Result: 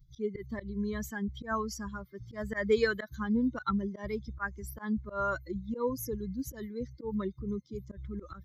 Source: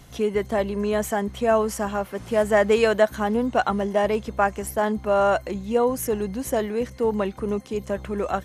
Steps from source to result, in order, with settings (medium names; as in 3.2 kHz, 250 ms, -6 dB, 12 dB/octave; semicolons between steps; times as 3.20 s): expander on every frequency bin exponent 2; slow attack 102 ms; static phaser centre 2.7 kHz, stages 6